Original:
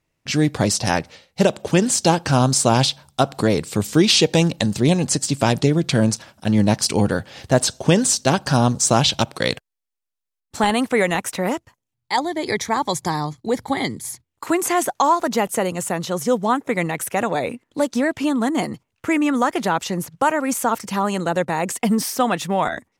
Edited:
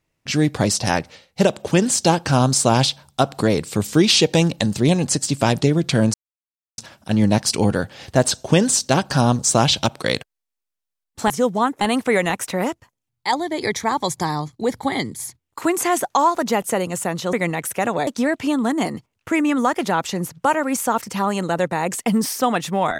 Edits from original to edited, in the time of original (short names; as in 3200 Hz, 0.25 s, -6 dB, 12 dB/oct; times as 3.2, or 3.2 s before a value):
6.14 insert silence 0.64 s
16.18–16.69 move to 10.66
17.43–17.84 cut